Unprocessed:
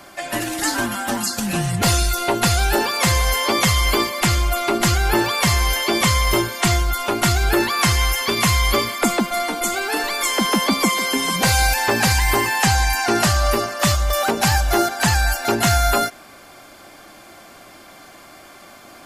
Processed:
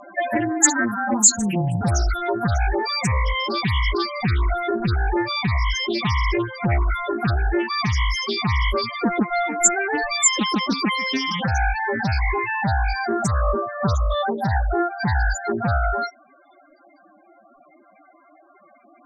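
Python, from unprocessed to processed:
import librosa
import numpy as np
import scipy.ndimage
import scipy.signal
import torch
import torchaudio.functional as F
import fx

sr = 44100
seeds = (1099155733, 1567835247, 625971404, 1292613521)

y = fx.spec_topn(x, sr, count=8)
y = fx.rider(y, sr, range_db=10, speed_s=0.5)
y = fx.lowpass_res(y, sr, hz=7000.0, q=14.0)
y = fx.doppler_dist(y, sr, depth_ms=0.3)
y = y * librosa.db_to_amplitude(-1.0)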